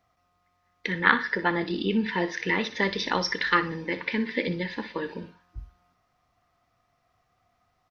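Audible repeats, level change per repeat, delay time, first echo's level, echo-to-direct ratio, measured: 2, -12.0 dB, 61 ms, -14.0 dB, -13.5 dB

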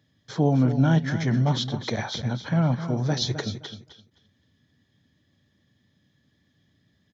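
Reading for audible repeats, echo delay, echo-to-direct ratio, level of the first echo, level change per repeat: 2, 0.26 s, -11.0 dB, -11.0 dB, -14.5 dB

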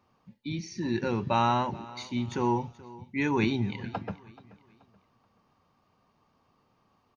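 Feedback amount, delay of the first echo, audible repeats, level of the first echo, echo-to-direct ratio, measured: 36%, 0.43 s, 2, -20.0 dB, -19.5 dB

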